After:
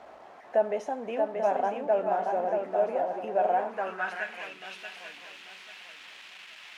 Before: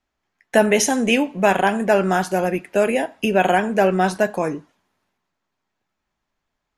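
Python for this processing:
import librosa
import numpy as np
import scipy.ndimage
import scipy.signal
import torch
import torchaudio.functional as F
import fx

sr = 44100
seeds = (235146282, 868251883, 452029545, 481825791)

y = x + 0.5 * 10.0 ** (-26.0 / 20.0) * np.sign(x)
y = fx.echo_swing(y, sr, ms=840, ratio=3, feedback_pct=32, wet_db=-4.5)
y = fx.filter_sweep_bandpass(y, sr, from_hz=670.0, to_hz=2700.0, start_s=3.48, end_s=4.47, q=2.4)
y = F.gain(torch.from_numpy(y), -7.5).numpy()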